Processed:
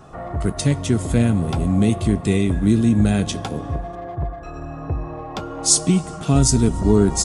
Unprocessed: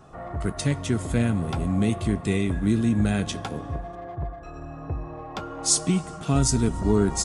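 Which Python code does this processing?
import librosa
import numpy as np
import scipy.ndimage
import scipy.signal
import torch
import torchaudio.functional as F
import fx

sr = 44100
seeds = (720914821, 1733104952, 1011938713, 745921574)

y = fx.dynamic_eq(x, sr, hz=1600.0, q=0.83, threshold_db=-42.0, ratio=4.0, max_db=-5)
y = F.gain(torch.from_numpy(y), 6.0).numpy()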